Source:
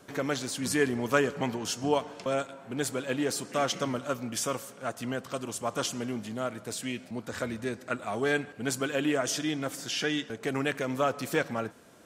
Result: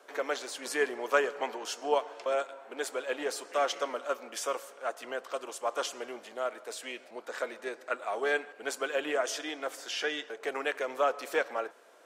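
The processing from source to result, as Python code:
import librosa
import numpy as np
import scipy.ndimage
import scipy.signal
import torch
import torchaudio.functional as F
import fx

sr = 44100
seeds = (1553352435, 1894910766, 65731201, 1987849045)

y = fx.octave_divider(x, sr, octaves=1, level_db=-3.0)
y = scipy.signal.sosfilt(scipy.signal.butter(4, 430.0, 'highpass', fs=sr, output='sos'), y)
y = fx.high_shelf(y, sr, hz=3600.0, db=-8.5)
y = y * librosa.db_to_amplitude(1.0)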